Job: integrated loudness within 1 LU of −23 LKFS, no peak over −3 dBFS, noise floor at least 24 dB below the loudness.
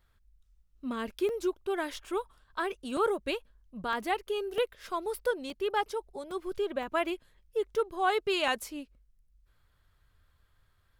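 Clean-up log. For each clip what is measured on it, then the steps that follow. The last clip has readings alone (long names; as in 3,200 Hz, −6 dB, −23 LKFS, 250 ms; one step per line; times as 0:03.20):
number of dropouts 8; longest dropout 1.9 ms; integrated loudness −33.0 LKFS; sample peak −15.0 dBFS; target loudness −23.0 LKFS
→ repair the gap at 0:01.29/0:02.97/0:03.93/0:04.58/0:05.50/0:06.31/0:06.83/0:08.48, 1.9 ms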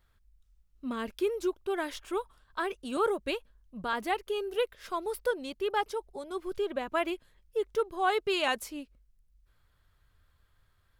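number of dropouts 0; integrated loudness −33.0 LKFS; sample peak −15.0 dBFS; target loudness −23.0 LKFS
→ level +10 dB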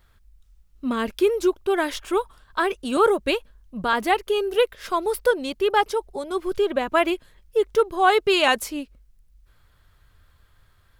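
integrated loudness −23.0 LKFS; sample peak −5.0 dBFS; background noise floor −59 dBFS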